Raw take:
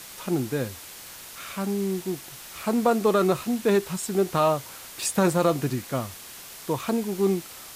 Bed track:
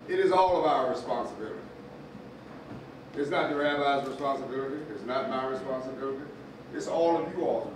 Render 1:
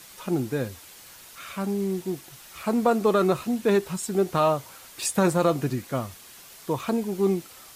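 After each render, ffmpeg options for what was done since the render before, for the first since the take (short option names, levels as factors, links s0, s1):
-af "afftdn=nr=6:nf=-43"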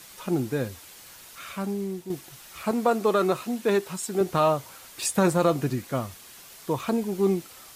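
-filter_complex "[0:a]asettb=1/sr,asplit=3[s0][s1][s2];[s0]atrim=end=2.714[s3];[s1]atrim=start=2.71:end=4.21,asetpts=PTS-STARTPTS,afade=t=in:d=0.004:c=qsin,afade=t=out:st=1.496:d=0.004:c=qsin,highpass=f=260:p=1[s4];[s2]atrim=start=4.206[s5];[s3][s4]acrossfade=d=0.004:c1=hsin:c2=qsin[s6];[s6][s5]acrossfade=d=0.004:c1=qsin:c2=hsin,asplit=2[s7][s8];[s7]atrim=end=2.1,asetpts=PTS-STARTPTS,afade=t=out:st=1.47:d=0.63:silence=0.398107[s9];[s8]atrim=start=2.1,asetpts=PTS-STARTPTS,afade=t=in:d=0.004:c=hsin:silence=0.398107[s10];[s9][s10]concat=n=2:v=0:a=1"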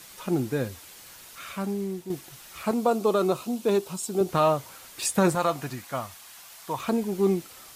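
-filter_complex "[0:a]asettb=1/sr,asplit=3[s0][s1][s2];[s0]atrim=end=2.744[s3];[s1]atrim=start=2.74:end=4.29,asetpts=PTS-STARTPTS,afade=t=in:d=0.004:c=qsin,afade=t=out:st=1.546:d=0.004:c=qsin,equalizer=f=1800:w=2:g=-11[s4];[s2]atrim=start=4.286[s5];[s3][s4]acrossfade=d=0.004:c1=hsin:c2=qsin[s6];[s6][s5]acrossfade=d=0.004:c1=qsin:c2=hsin,asettb=1/sr,asplit=3[s7][s8][s9];[s7]atrim=end=5.354[s10];[s8]atrim=start=5.35:end=6.79,asetpts=PTS-STARTPTS,afade=t=in:d=0.004:c=qsin,afade=t=out:st=1.436:d=0.004:c=qsin,lowshelf=f=570:t=q:w=1.5:g=-7.5[s11];[s9]atrim=start=6.786[s12];[s10][s11]acrossfade=d=0.004:c1=hsin:c2=qsin[s13];[s13][s12]acrossfade=d=0.004:c1=qsin:c2=hsin"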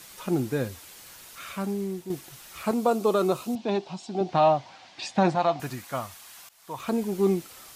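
-filter_complex "[0:a]asettb=1/sr,asplit=3[s0][s1][s2];[s0]atrim=end=3.554[s3];[s1]atrim=start=3.55:end=5.6,asetpts=PTS-STARTPTS,afade=t=in:d=0.004:c=qsin,afade=t=out:st=2.046:d=0.004:c=qsin,highpass=120,equalizer=f=450:t=q:w=4:g=-10,equalizer=f=750:t=q:w=4:g=10,equalizer=f=1300:t=q:w=4:g=-7,lowpass=f=5000:w=0.5412,lowpass=f=5000:w=1.3066[s4];[s2]atrim=start=5.596[s5];[s3][s4]acrossfade=d=0.004:c1=hsin:c2=qsin[s6];[s6][s5]acrossfade=d=0.004:c1=qsin:c2=hsin,asplit=2[s7][s8];[s7]atrim=end=6.49,asetpts=PTS-STARTPTS,afade=t=out:st=6.486:d=0.004:c=hsin:silence=0.133352[s9];[s8]atrim=start=6.49,asetpts=PTS-STARTPTS,afade=t=in:d=0.53:silence=0.133352[s10];[s9][s10]concat=n=2:v=0:a=1"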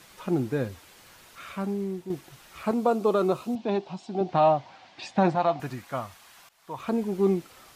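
-af "highshelf=f=4500:g=-11"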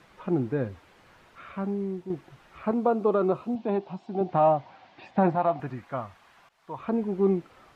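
-filter_complex "[0:a]acrossover=split=2800[s0][s1];[s1]acompressor=threshold=0.00141:ratio=4:attack=1:release=60[s2];[s0][s2]amix=inputs=2:normalize=0,aemphasis=mode=reproduction:type=75kf"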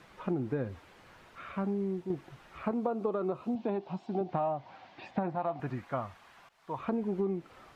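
-af "acompressor=threshold=0.0398:ratio=10"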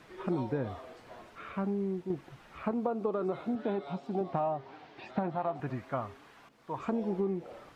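-filter_complex "[1:a]volume=0.0944[s0];[0:a][s0]amix=inputs=2:normalize=0"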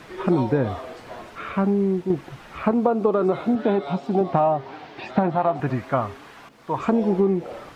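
-af "volume=3.98"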